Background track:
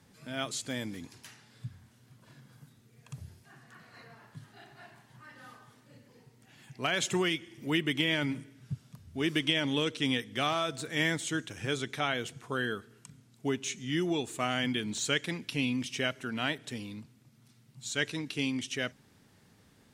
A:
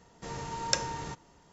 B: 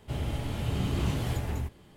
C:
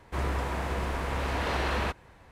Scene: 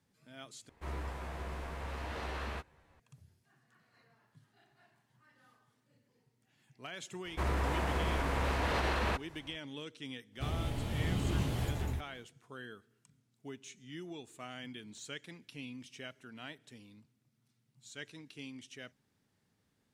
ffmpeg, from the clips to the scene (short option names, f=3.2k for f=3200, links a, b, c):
-filter_complex "[3:a]asplit=2[a][b];[0:a]volume=-15dB[c];[a]asplit=2[d][e];[e]adelay=13,volume=-5dB[f];[d][f]amix=inputs=2:normalize=0[g];[b]alimiter=limit=-21.5dB:level=0:latency=1:release=42[h];[c]asplit=2[i][j];[i]atrim=end=0.694[k];[g]atrim=end=2.31,asetpts=PTS-STARTPTS,volume=-12.5dB[l];[j]atrim=start=2.996[m];[h]atrim=end=2.31,asetpts=PTS-STARTPTS,volume=-1.5dB,afade=t=in:d=0.004:c=hsin,afade=t=out:st=2.306:d=0.004:c=hsin,adelay=7250[n];[2:a]atrim=end=1.96,asetpts=PTS-STARTPTS,volume=-4dB,afade=t=in:d=0.1,afade=t=out:st=1.86:d=0.1,adelay=10320[o];[k][l]acrossfade=d=0.004:c1=hsin:c2=hsin[p];[p][m]acrossfade=d=0.004:c1=hsin:c2=hsin[q];[q][n][o]amix=inputs=3:normalize=0"